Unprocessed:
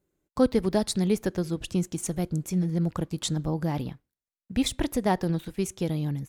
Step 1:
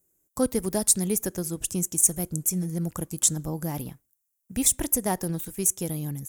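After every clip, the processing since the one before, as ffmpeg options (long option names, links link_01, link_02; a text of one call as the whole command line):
ffmpeg -i in.wav -af "aexciter=amount=7.9:drive=6.4:freq=6100,volume=-3dB" out.wav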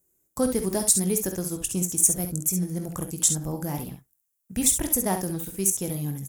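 ffmpeg -i in.wav -af "aecho=1:1:21|51|67:0.266|0.266|0.376" out.wav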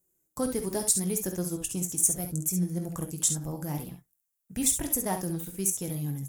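ffmpeg -i in.wav -af "flanger=delay=5.6:depth=1.7:regen=61:speed=0.73:shape=sinusoidal" out.wav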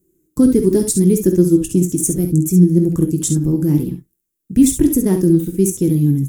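ffmpeg -i in.wav -af "lowshelf=frequency=490:width_type=q:width=3:gain=12,volume=4dB" out.wav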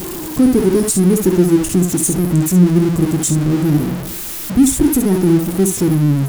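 ffmpeg -i in.wav -af "aeval=exprs='val(0)+0.5*0.119*sgn(val(0))':channel_layout=same,volume=-1dB" out.wav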